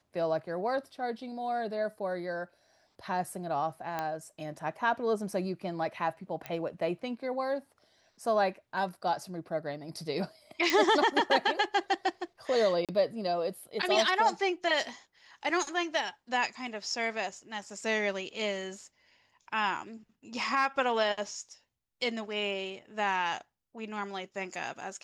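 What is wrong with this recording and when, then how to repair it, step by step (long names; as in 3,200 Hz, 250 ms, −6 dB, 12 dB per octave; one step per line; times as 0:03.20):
0:03.99: click −19 dBFS
0:06.46: click −21 dBFS
0:10.70: click −13 dBFS
0:12.85–0:12.89: drop-out 37 ms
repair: click removal
repair the gap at 0:12.85, 37 ms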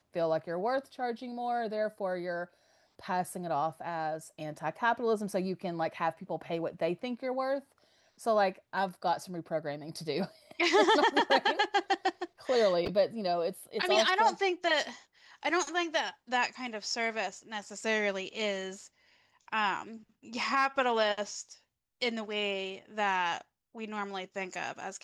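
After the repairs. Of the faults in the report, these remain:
0:06.46: click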